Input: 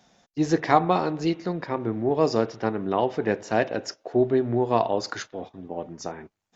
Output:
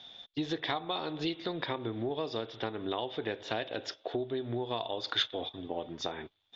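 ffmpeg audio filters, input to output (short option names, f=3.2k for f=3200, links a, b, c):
-af "equalizer=f=190:w=4.2:g=-11,acompressor=threshold=-31dB:ratio=10,lowpass=f=3.5k:t=q:w=16"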